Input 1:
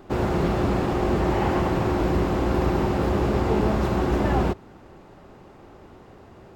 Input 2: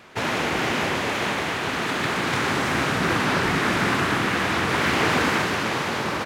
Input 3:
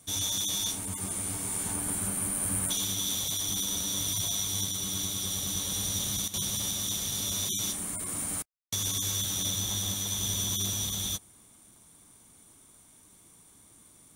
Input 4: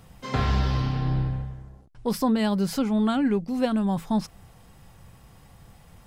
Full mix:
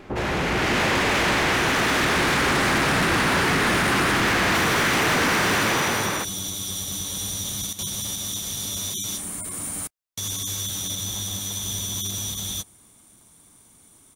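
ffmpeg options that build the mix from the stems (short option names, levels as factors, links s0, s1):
-filter_complex "[0:a]lowpass=1900,volume=0.501[s0];[1:a]equalizer=f=1900:w=1.5:g=2.5,volume=0.316[s1];[2:a]adelay=1450,volume=0.631[s2];[s0][s2]amix=inputs=2:normalize=0,alimiter=level_in=1.12:limit=0.0631:level=0:latency=1,volume=0.891,volume=1[s3];[s1]dynaudnorm=f=200:g=7:m=3.98,alimiter=limit=0.251:level=0:latency=1,volume=1[s4];[s3][s4]amix=inputs=2:normalize=0,acontrast=84,asoftclip=type=tanh:threshold=0.126"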